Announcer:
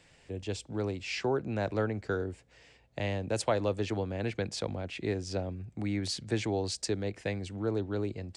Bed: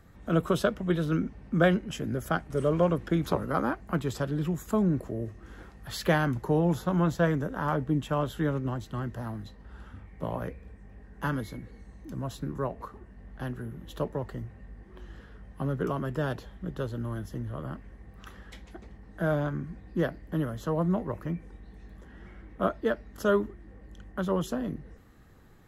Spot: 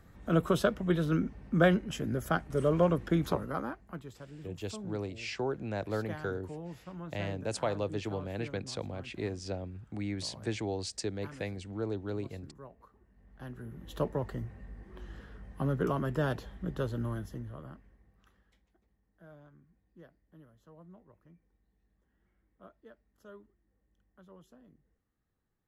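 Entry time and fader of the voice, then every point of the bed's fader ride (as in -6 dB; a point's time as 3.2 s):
4.15 s, -3.5 dB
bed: 3.23 s -1.5 dB
4.2 s -18 dB
12.94 s -18 dB
14 s -0.5 dB
17.06 s -0.5 dB
18.74 s -27 dB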